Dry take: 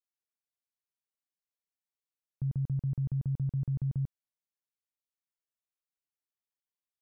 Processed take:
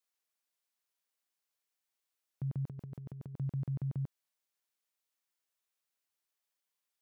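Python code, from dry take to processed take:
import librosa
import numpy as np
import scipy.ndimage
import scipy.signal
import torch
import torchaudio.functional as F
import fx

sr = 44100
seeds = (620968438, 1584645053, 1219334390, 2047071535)

y = fx.over_compress(x, sr, threshold_db=-37.0, ratio=-0.5, at=(2.67, 3.36))
y = fx.highpass(y, sr, hz=480.0, slope=6)
y = y * 10.0 ** (7.0 / 20.0)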